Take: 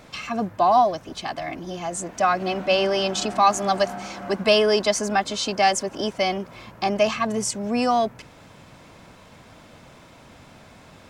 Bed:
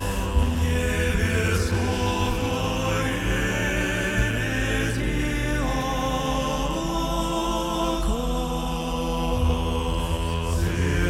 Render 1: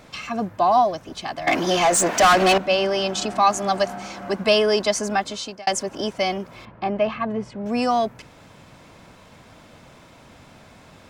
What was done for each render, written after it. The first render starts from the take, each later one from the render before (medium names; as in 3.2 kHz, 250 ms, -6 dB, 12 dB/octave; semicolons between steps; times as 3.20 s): 1.47–2.58 s: overdrive pedal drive 26 dB, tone 7.6 kHz, clips at -8 dBFS; 5.02–5.67 s: fade out equal-power; 6.65–7.66 s: distance through air 400 m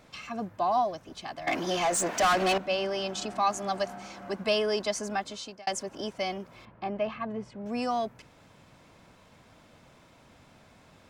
trim -9 dB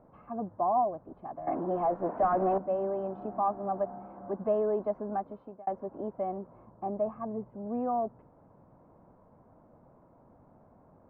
low-pass 1 kHz 24 dB/octave; peaking EQ 68 Hz -3.5 dB 2.4 oct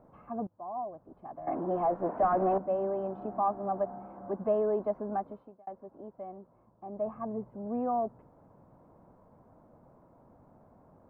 0.47–1.73 s: fade in, from -21.5 dB; 5.29–7.14 s: dip -9.5 dB, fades 0.27 s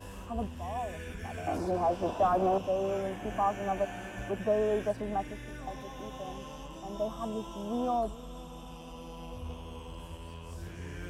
add bed -19 dB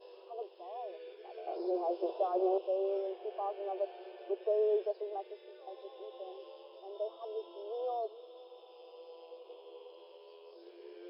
FFT band-pass 340–5300 Hz; FFT filter 470 Hz 0 dB, 1.7 kHz -22 dB, 3.9 kHz -5 dB